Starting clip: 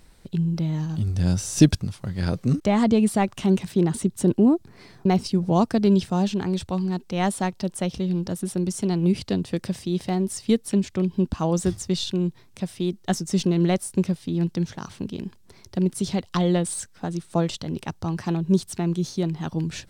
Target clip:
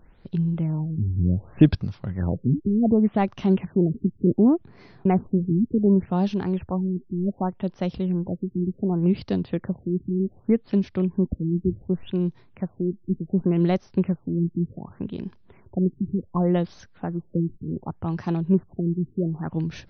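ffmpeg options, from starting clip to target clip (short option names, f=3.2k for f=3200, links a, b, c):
-af "aemphasis=mode=reproduction:type=75kf,afftfilt=real='re*lt(b*sr/1024,380*pow(6400/380,0.5+0.5*sin(2*PI*0.67*pts/sr)))':imag='im*lt(b*sr/1024,380*pow(6400/380,0.5+0.5*sin(2*PI*0.67*pts/sr)))':win_size=1024:overlap=0.75"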